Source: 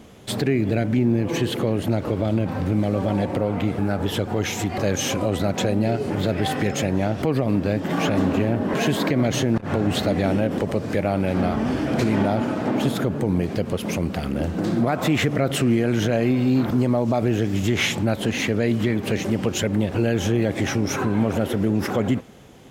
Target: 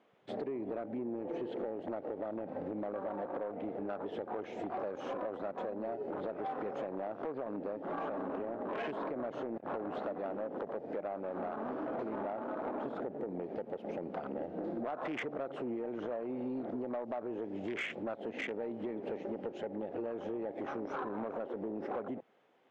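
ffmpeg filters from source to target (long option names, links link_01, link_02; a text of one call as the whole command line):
ffmpeg -i in.wav -af "lowpass=2300,afwtdn=0.0447,highpass=480,acompressor=threshold=-34dB:ratio=6,asoftclip=type=tanh:threshold=-29dB" out.wav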